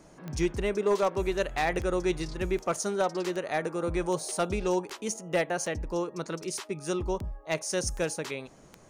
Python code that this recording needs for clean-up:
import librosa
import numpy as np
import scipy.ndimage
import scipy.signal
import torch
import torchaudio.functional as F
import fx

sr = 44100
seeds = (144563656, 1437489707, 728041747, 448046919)

y = fx.fix_declip(x, sr, threshold_db=-18.5)
y = fx.fix_declick_ar(y, sr, threshold=10.0)